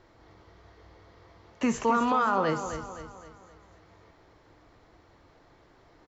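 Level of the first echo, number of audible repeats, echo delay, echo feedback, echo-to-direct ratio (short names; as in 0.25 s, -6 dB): -10.0 dB, 4, 0.259 s, 46%, -9.0 dB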